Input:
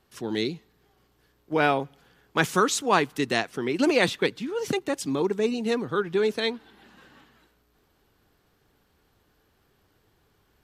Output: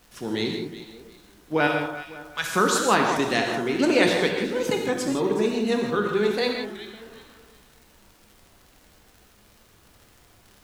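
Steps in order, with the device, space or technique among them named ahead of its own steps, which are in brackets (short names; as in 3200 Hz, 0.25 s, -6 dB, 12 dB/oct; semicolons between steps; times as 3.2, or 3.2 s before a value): 1.67–2.46 passive tone stack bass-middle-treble 10-0-10; echo with dull and thin repeats by turns 0.185 s, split 1700 Hz, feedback 52%, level -8 dB; warped LP (record warp 33 1/3 rpm, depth 160 cents; crackle 78/s -41 dBFS; pink noise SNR 31 dB); non-linear reverb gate 0.19 s flat, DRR 2 dB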